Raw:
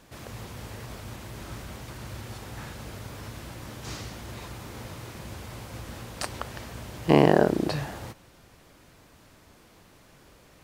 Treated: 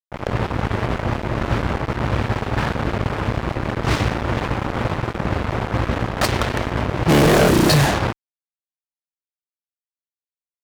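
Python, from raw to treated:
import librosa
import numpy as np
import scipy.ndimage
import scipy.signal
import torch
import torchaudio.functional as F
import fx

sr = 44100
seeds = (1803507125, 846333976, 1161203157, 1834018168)

y = fx.env_lowpass(x, sr, base_hz=590.0, full_db=-25.5)
y = fx.fuzz(y, sr, gain_db=37.0, gate_db=-41.0)
y = y * 10.0 ** (2.0 / 20.0)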